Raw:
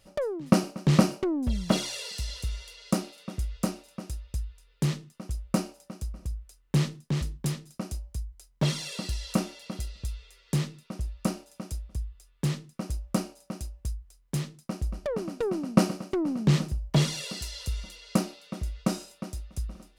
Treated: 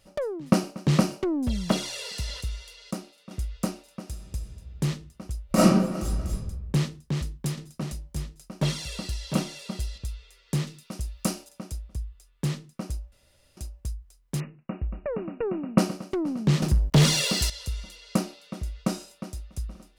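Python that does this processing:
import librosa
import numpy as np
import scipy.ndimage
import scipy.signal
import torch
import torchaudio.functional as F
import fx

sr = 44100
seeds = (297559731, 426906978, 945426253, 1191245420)

y = fx.band_squash(x, sr, depth_pct=40, at=(0.87, 2.41))
y = fx.reverb_throw(y, sr, start_s=4.01, length_s=0.42, rt60_s=2.2, drr_db=4.0)
y = fx.reverb_throw(y, sr, start_s=5.46, length_s=0.86, rt60_s=1.0, drr_db=-11.5)
y = fx.echo_single(y, sr, ms=703, db=-6.5, at=(6.87, 9.98))
y = fx.high_shelf(y, sr, hz=2900.0, db=9.5, at=(10.67, 11.49))
y = fx.brickwall_lowpass(y, sr, high_hz=2900.0, at=(14.4, 15.78))
y = fx.leveller(y, sr, passes=3, at=(16.62, 17.5))
y = fx.edit(y, sr, fx.clip_gain(start_s=2.91, length_s=0.4, db=-7.0),
    fx.room_tone_fill(start_s=13.12, length_s=0.45), tone=tone)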